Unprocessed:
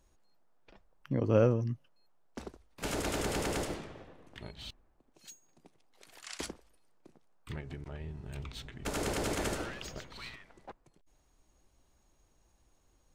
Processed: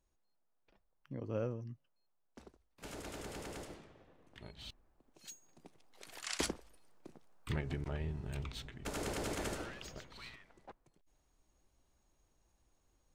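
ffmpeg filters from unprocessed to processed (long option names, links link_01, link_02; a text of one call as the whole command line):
ffmpeg -i in.wav -af "volume=4dB,afade=type=in:start_time=3.98:duration=0.66:silence=0.398107,afade=type=in:start_time=4.64:duration=1.55:silence=0.375837,afade=type=out:start_time=7.9:duration=0.99:silence=0.334965" out.wav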